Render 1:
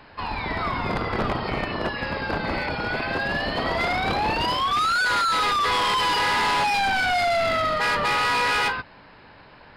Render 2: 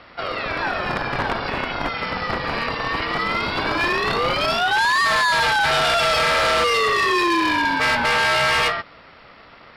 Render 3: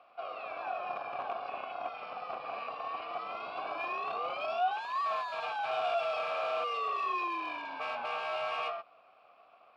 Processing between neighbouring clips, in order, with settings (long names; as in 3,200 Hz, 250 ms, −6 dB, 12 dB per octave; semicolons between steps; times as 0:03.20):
low-shelf EQ 230 Hz −11 dB; ring modulation 350 Hz; level +7 dB
formant filter a; level −4.5 dB